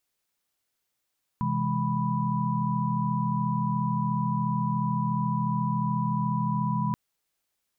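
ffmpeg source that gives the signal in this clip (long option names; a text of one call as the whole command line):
ffmpeg -f lavfi -i "aevalsrc='0.0335*(sin(2*PI*130.81*t)+sin(2*PI*164.81*t)+sin(2*PI*207.65*t)+sin(2*PI*987.77*t))':duration=5.53:sample_rate=44100" out.wav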